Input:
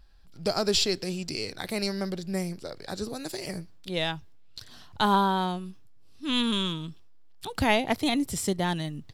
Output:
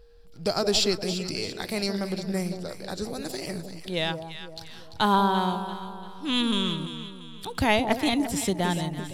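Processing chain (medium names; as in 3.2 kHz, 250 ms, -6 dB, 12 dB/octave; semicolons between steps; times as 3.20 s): whistle 470 Hz -57 dBFS; echo whose repeats swap between lows and highs 171 ms, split 930 Hz, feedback 64%, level -7 dB; trim +1 dB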